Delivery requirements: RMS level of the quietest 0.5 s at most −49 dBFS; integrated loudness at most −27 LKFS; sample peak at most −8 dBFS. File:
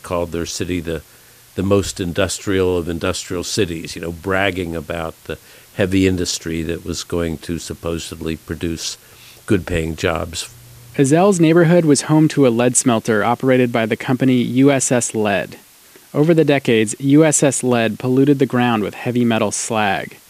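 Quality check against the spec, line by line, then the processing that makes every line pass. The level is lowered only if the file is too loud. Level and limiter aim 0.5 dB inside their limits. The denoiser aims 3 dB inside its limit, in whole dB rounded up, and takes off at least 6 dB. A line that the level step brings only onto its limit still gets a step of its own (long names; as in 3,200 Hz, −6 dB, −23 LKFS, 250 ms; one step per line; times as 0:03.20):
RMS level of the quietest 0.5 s −46 dBFS: out of spec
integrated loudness −17.0 LKFS: out of spec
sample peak −1.5 dBFS: out of spec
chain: level −10.5 dB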